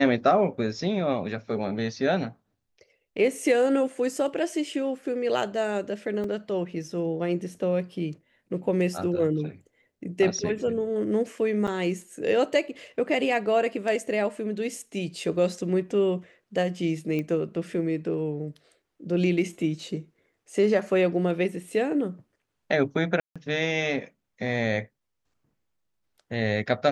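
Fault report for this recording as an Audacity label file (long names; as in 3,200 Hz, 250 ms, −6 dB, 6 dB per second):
6.240000	6.240000	drop-out 2.8 ms
11.670000	11.680000	drop-out 6.3 ms
17.190000	17.190000	click −19 dBFS
23.200000	23.360000	drop-out 156 ms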